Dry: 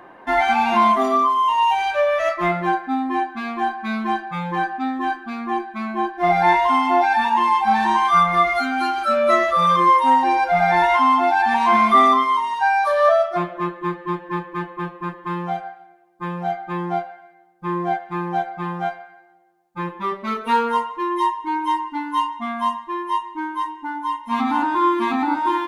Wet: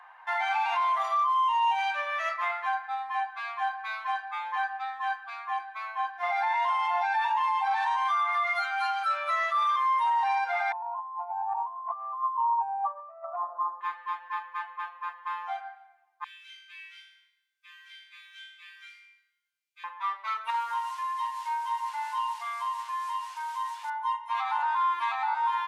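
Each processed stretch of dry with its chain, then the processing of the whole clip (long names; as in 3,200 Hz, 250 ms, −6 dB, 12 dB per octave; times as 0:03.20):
0:10.72–0:13.81: elliptic low-pass filter 1,100 Hz, stop band 50 dB + compressor whose output falls as the input rises −23 dBFS, ratio −0.5
0:16.24–0:19.84: elliptic band-stop filter 110–2,500 Hz, stop band 60 dB + flutter between parallel walls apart 3.4 metres, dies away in 0.76 s
0:20.50–0:23.90: linear delta modulator 64 kbit/s, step −33.5 dBFS + downward compressor 3 to 1, threshold −25 dBFS + double-tracking delay 42 ms −5.5 dB
whole clip: Chebyshev high-pass filter 830 Hz, order 4; high-shelf EQ 6,500 Hz −8 dB; brickwall limiter −16 dBFS; level −4 dB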